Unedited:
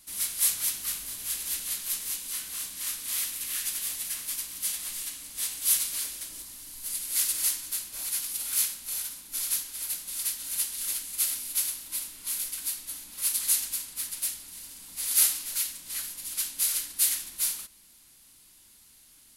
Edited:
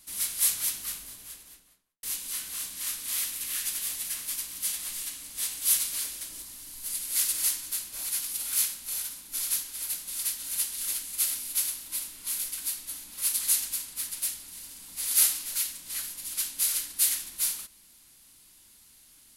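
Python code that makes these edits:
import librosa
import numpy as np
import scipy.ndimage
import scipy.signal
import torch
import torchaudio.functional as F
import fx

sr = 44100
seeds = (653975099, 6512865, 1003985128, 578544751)

y = fx.studio_fade_out(x, sr, start_s=0.58, length_s=1.45)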